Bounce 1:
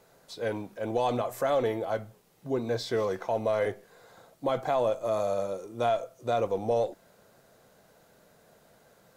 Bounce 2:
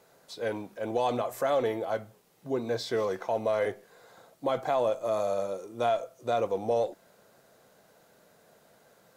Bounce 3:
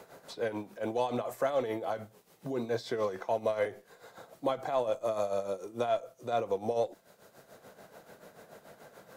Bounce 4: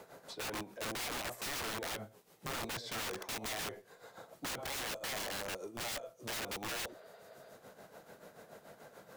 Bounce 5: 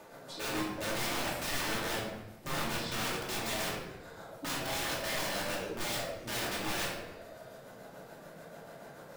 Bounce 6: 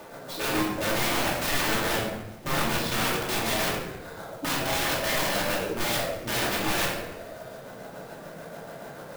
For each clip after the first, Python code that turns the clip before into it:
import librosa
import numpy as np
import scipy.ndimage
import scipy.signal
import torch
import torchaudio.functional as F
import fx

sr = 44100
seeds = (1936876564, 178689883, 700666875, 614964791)

y1 = fx.low_shelf(x, sr, hz=97.0, db=-10.5)
y2 = y1 * (1.0 - 0.68 / 2.0 + 0.68 / 2.0 * np.cos(2.0 * np.pi * 6.9 * (np.arange(len(y1)) / sr)))
y2 = fx.band_squash(y2, sr, depth_pct=40)
y3 = y2 + 10.0 ** (-21.5 / 20.0) * np.pad(y2, (int(114 * sr / 1000.0), 0))[:len(y2)]
y3 = (np.mod(10.0 ** (32.5 / 20.0) * y3 + 1.0, 2.0) - 1.0) / 10.0 ** (32.5 / 20.0)
y3 = fx.spec_repair(y3, sr, seeds[0], start_s=6.91, length_s=0.56, low_hz=390.0, high_hz=5000.0, source='after')
y3 = y3 * 10.0 ** (-2.0 / 20.0)
y4 = fx.room_shoebox(y3, sr, seeds[1], volume_m3=480.0, walls='mixed', distance_m=2.6)
y4 = y4 * 10.0 ** (-1.5 / 20.0)
y5 = fx.clock_jitter(y4, sr, seeds[2], jitter_ms=0.027)
y5 = y5 * 10.0 ** (8.5 / 20.0)